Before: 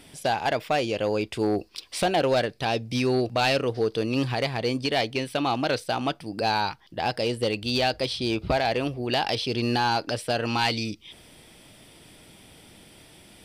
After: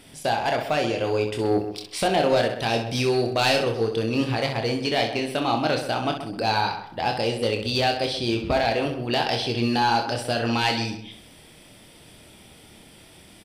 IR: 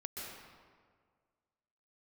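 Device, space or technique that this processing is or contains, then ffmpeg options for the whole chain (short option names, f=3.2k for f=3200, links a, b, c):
slapback doubling: -filter_complex "[0:a]asettb=1/sr,asplit=3[a][b][c];[a]atrim=end=2.404[d];[b]atrim=start=2.4:end=3.81,asetpts=PTS-STARTPTS,afade=t=in:d=0.004:c=qsin,afade=t=out:st=1.406:d=0.004:c=qsin,highshelf=f=5.1k:g=6[e];[c]atrim=start=3.806[f];[d][e]acrossfade=d=0.004:c1=hsin:c2=qsin[g];[g][f]acrossfade=d=0.004:c1=qsin:c2=hsin,asplit=3[h][i][j];[i]adelay=26,volume=-6dB[k];[j]adelay=64,volume=-8dB[l];[h][k][l]amix=inputs=3:normalize=0,asplit=2[m][n];[n]adelay=130,lowpass=f=2.2k:p=1,volume=-10dB,asplit=2[o][p];[p]adelay=130,lowpass=f=2.2k:p=1,volume=0.29,asplit=2[q][r];[r]adelay=130,lowpass=f=2.2k:p=1,volume=0.29[s];[m][o][q][s]amix=inputs=4:normalize=0"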